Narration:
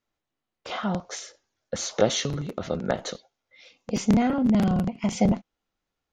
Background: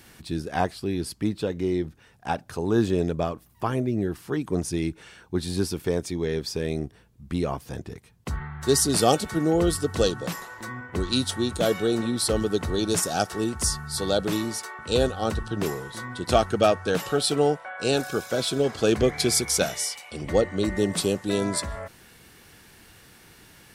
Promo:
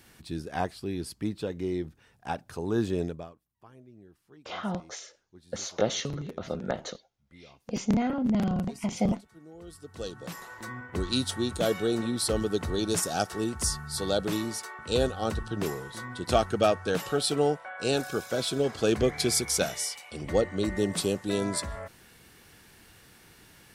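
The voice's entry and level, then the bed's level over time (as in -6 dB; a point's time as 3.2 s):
3.80 s, -5.0 dB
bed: 3.05 s -5.5 dB
3.44 s -27 dB
9.54 s -27 dB
10.5 s -3.5 dB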